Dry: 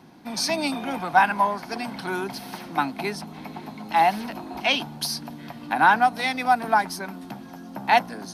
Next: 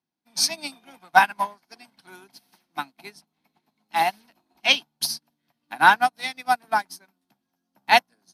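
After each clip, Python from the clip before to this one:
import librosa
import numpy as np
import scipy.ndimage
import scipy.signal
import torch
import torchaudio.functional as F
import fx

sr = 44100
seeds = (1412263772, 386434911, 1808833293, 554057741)

y = fx.high_shelf(x, sr, hz=2300.0, db=12.0)
y = fx.upward_expand(y, sr, threshold_db=-38.0, expansion=2.5)
y = F.gain(torch.from_numpy(y), 1.5).numpy()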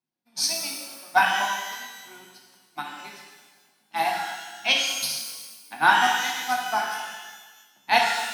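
y = fx.rev_shimmer(x, sr, seeds[0], rt60_s=1.3, semitones=12, shimmer_db=-8, drr_db=-1.0)
y = F.gain(torch.from_numpy(y), -5.0).numpy()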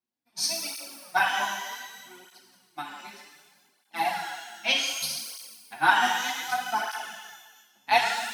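y = fx.flanger_cancel(x, sr, hz=0.65, depth_ms=7.4)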